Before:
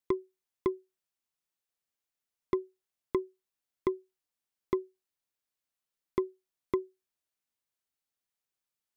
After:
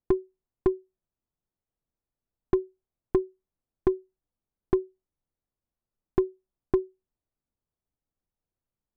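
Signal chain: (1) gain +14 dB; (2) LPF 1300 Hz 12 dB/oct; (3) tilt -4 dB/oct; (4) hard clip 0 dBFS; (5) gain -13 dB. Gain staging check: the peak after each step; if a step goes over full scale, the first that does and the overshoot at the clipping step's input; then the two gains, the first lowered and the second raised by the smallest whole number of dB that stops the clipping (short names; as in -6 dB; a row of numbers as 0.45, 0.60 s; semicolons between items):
-3.0, -3.5, +5.0, 0.0, -13.0 dBFS; step 3, 5.0 dB; step 1 +9 dB, step 5 -8 dB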